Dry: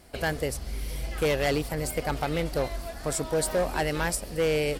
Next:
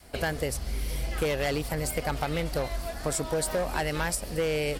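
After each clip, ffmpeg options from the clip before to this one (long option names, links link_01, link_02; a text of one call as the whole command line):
ffmpeg -i in.wav -af "adynamicequalizer=threshold=0.01:dfrequency=350:dqfactor=1.1:tfrequency=350:tqfactor=1.1:attack=5:release=100:ratio=0.375:range=2:mode=cutabove:tftype=bell,acompressor=threshold=-27dB:ratio=6,volume=2.5dB" out.wav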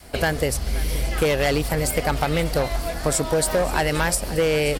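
ffmpeg -i in.wav -af "aecho=1:1:528:0.141,volume=7.5dB" out.wav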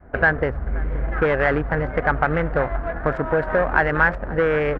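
ffmpeg -i in.wav -af "adynamicsmooth=sensitivity=1.5:basefreq=760,lowpass=frequency=1600:width_type=q:width=3.4" out.wav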